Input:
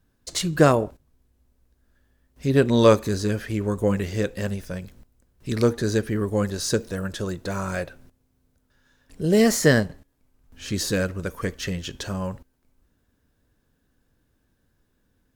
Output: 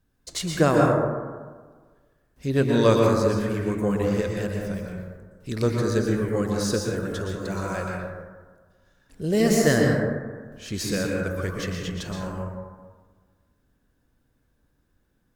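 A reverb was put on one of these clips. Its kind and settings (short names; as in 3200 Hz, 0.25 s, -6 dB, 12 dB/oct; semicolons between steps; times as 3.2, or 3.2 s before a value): plate-style reverb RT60 1.5 s, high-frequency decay 0.3×, pre-delay 0.105 s, DRR -1 dB; gain -4 dB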